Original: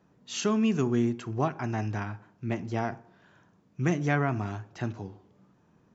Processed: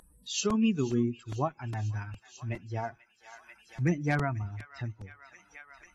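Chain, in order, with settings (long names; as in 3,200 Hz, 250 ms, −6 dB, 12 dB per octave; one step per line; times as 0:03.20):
spectral dynamics exaggerated over time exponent 2
low-shelf EQ 120 Hz +5 dB
delay with a high-pass on its return 490 ms, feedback 51%, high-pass 1,700 Hz, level −17 dB
hard clipping −16.5 dBFS, distortion −33 dB
high-shelf EQ 2,700 Hz +5 dB, from 0:01.67 +10.5 dB, from 0:03.81 +3.5 dB
tape wow and flutter 17 cents
upward compression, threshold −34 dBFS
regular buffer underruns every 0.41 s, samples 128, repeat, from 0:00.50
AAC 32 kbit/s 32,000 Hz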